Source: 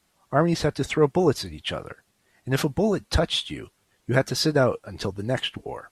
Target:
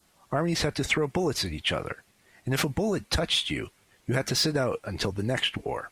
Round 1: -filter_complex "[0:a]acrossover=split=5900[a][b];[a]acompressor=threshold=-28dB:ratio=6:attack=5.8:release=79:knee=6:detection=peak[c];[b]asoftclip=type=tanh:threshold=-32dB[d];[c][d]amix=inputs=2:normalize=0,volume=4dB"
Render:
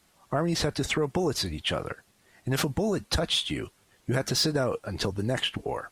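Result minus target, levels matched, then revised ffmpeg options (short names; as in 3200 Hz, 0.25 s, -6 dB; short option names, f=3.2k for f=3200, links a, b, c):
2000 Hz band -2.5 dB
-filter_complex "[0:a]acrossover=split=5900[a][b];[a]acompressor=threshold=-28dB:ratio=6:attack=5.8:release=79:knee=6:detection=peak,adynamicequalizer=threshold=0.00251:dfrequency=2200:dqfactor=2.5:tfrequency=2200:tqfactor=2.5:attack=5:release=100:ratio=0.438:range=3:mode=boostabove:tftype=bell[c];[b]asoftclip=type=tanh:threshold=-32dB[d];[c][d]amix=inputs=2:normalize=0,volume=4dB"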